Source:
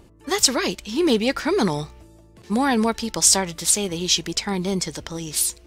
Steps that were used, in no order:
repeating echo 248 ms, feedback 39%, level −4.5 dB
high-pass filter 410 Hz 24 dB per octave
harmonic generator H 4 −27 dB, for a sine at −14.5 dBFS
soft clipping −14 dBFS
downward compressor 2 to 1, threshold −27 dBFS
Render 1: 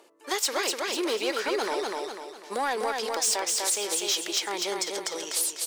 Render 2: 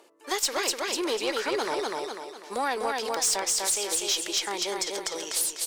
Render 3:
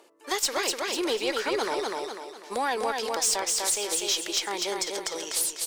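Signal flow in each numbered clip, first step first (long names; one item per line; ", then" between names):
harmonic generator, then high-pass filter, then soft clipping, then repeating echo, then downward compressor
repeating echo, then soft clipping, then high-pass filter, then downward compressor, then harmonic generator
high-pass filter, then soft clipping, then repeating echo, then downward compressor, then harmonic generator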